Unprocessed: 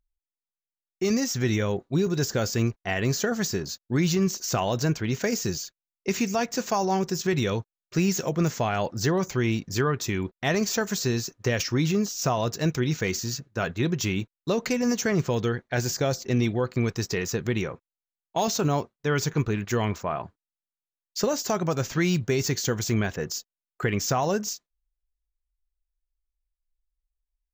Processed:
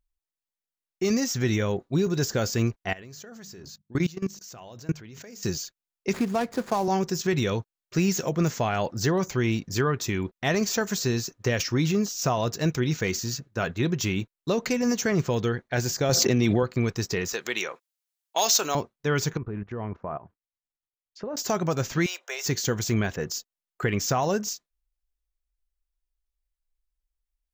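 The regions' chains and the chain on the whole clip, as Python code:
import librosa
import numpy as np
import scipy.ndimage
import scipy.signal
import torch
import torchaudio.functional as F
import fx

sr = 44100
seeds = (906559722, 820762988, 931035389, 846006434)

y = fx.chain(x, sr, fx.hum_notches(base_hz=50, count=4),
    fx.level_steps(step_db=22), at=(2.93, 5.43))
y = fx.chain(y, sr, fx.median_filter(points=15),
    fx.band_squash(depth_pct=40), at=(6.13, 6.88))
y = fx.chain(y, sr, fx.highpass(hz=100.0, slope=12),
    fx.env_flatten(amount_pct=100), at=(16.09, 16.63))
y = fx.chain(y, sr, fx.highpass(hz=490.0, slope=12),
    fx.high_shelf(hz=2100.0, db=10.0), at=(17.33, 18.75))
y = fx.chain(y, sr, fx.env_lowpass_down(base_hz=1300.0, full_db=-26.0),
    fx.high_shelf(hz=6300.0, db=-10.0),
    fx.level_steps(step_db=16), at=(19.37, 21.37))
y = fx.chain(y, sr, fx.steep_highpass(hz=550.0, slope=36),
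    fx.notch(hz=4400.0, q=6.2), at=(22.06, 22.46))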